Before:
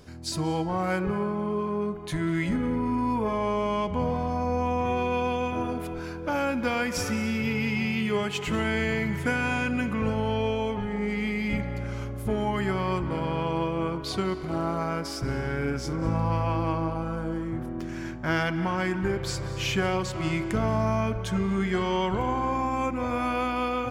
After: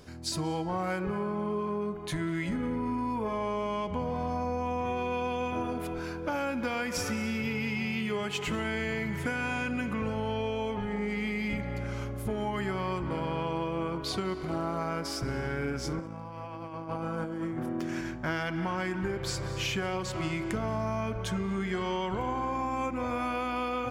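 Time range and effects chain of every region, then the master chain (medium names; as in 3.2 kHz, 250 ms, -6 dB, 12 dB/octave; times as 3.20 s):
15.99–18.01 s: high-pass 130 Hz + compressor with a negative ratio -33 dBFS, ratio -0.5 + band-stop 4.1 kHz, Q 23
whole clip: bass shelf 210 Hz -3 dB; compression, threshold -28 dBFS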